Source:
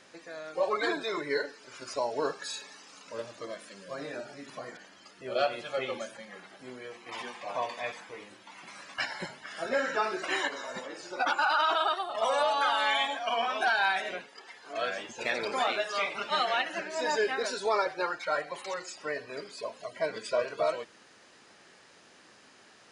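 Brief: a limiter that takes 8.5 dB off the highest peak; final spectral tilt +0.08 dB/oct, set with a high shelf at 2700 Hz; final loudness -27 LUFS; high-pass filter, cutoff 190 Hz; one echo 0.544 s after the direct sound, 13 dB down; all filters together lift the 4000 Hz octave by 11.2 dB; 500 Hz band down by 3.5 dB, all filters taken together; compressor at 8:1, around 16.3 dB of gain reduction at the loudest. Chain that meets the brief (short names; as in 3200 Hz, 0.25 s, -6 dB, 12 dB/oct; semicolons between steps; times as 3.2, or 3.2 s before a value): HPF 190 Hz; bell 500 Hz -5 dB; high shelf 2700 Hz +7.5 dB; bell 4000 Hz +8 dB; compressor 8:1, threshold -36 dBFS; limiter -31.5 dBFS; echo 0.544 s -13 dB; gain +13.5 dB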